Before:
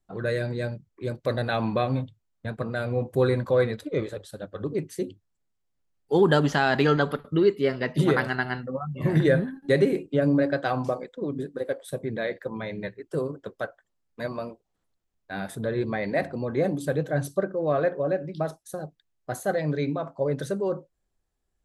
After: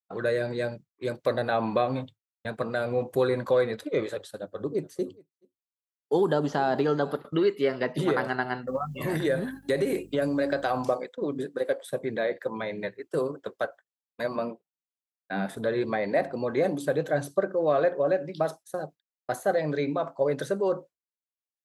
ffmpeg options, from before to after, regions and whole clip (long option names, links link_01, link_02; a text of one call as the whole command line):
ffmpeg -i in.wav -filter_complex "[0:a]asettb=1/sr,asplit=3[link_01][link_02][link_03];[link_01]atrim=end=4.384[link_04];[link_02]atrim=start=4.38:end=7.22,asetpts=PTS-STARTPTS,afade=type=in:duration=0.004:curve=qsin,afade=type=out:start_time=2.836:duration=0.004:curve=qsin,acrossover=split=5100[link_05][link_06];[link_06]acompressor=threshold=-55dB:ratio=4:attack=1:release=60[link_07];[link_05][link_07]amix=inputs=2:normalize=0,equalizer=frequency=2300:width=0.73:gain=-12,aecho=1:1:422:0.0841,atrim=end_sample=125244[link_08];[link_03]atrim=start=7.216[link_09];[link_04][link_08]acrossfade=duration=0.004:curve1=hsin:curve2=qsin[link_10];[link_10][link_09]acrossfade=duration=0.004:curve1=qsin:curve2=hsin,asettb=1/sr,asplit=3[link_11][link_12][link_13];[link_11]atrim=end=8.674[link_14];[link_12]atrim=start=8.67:end=10.85,asetpts=PTS-STARTPTS,afade=type=in:duration=0.004:curve=qsin,afade=type=out:start_time=2.176:duration=0.004:curve=qsin,aemphasis=mode=production:type=75kf,acompressor=threshold=-23dB:ratio=2.5:attack=3.2:release=140:knee=1:detection=peak,aeval=exprs='val(0)+0.00794*(sin(2*PI*50*n/s)+sin(2*PI*2*50*n/s)/2+sin(2*PI*3*50*n/s)/3+sin(2*PI*4*50*n/s)/4+sin(2*PI*5*50*n/s)/5)':channel_layout=same[link_15];[link_13]atrim=start=10.846[link_16];[link_14][link_15]acrossfade=duration=0.004:curve1=hsin:curve2=qsin[link_17];[link_17][link_16]acrossfade=duration=0.004:curve1=qsin:curve2=hsin,asettb=1/sr,asplit=3[link_18][link_19][link_20];[link_18]atrim=end=14.354[link_21];[link_19]atrim=start=14.35:end=15.57,asetpts=PTS-STARTPTS,afade=type=in:duration=0.004:curve=qsin,afade=type=out:start_time=1.216:duration=0.004:curve=qsin,highpass=frequency=150:width=0.5412,highpass=frequency=150:width=1.3066,bass=frequency=250:gain=12,treble=frequency=4000:gain=-9[link_22];[link_20]atrim=start=15.566[link_23];[link_21][link_22]acrossfade=duration=0.004:curve1=hsin:curve2=qsin[link_24];[link_24][link_23]acrossfade=duration=0.004:curve1=qsin:curve2=hsin,acrossover=split=1200|2400[link_25][link_26][link_27];[link_25]acompressor=threshold=-21dB:ratio=4[link_28];[link_26]acompressor=threshold=-46dB:ratio=4[link_29];[link_27]acompressor=threshold=-49dB:ratio=4[link_30];[link_28][link_29][link_30]amix=inputs=3:normalize=0,highpass=frequency=470:poles=1,agate=range=-33dB:threshold=-44dB:ratio=3:detection=peak,volume=5dB" out.wav